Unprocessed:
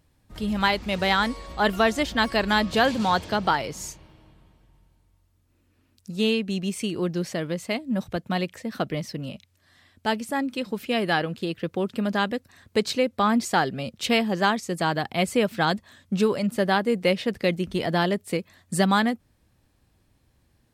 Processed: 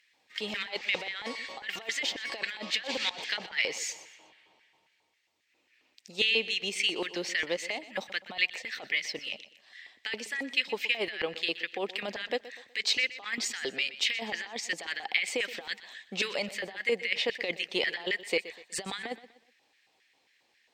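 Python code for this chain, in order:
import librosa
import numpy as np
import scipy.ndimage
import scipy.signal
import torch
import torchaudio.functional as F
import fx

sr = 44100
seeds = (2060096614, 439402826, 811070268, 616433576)

y = fx.filter_lfo_highpass(x, sr, shape='square', hz=3.7, low_hz=780.0, high_hz=1800.0, q=3.7)
y = fx.over_compress(y, sr, threshold_db=-28.0, ratio=-1.0)
y = scipy.signal.lfilter(np.full(4, 1.0 / 4), 1.0, y)
y = fx.band_shelf(y, sr, hz=1000.0, db=-12.5, octaves=1.7)
y = fx.echo_feedback(y, sr, ms=123, feedback_pct=38, wet_db=-16)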